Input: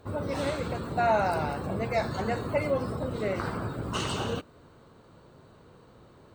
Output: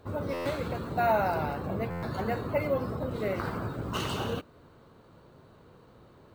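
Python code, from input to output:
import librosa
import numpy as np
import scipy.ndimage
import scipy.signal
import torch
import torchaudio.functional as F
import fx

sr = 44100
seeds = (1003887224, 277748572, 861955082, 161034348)

p1 = fx.high_shelf(x, sr, hz=6400.0, db=-6.5, at=(1.12, 3.09))
p2 = fx.sample_hold(p1, sr, seeds[0], rate_hz=15000.0, jitter_pct=0)
p3 = p1 + F.gain(torch.from_numpy(p2), -4.5).numpy()
p4 = fx.buffer_glitch(p3, sr, at_s=(0.33, 1.9), block=512, repeats=10)
y = F.gain(torch.from_numpy(p4), -5.0).numpy()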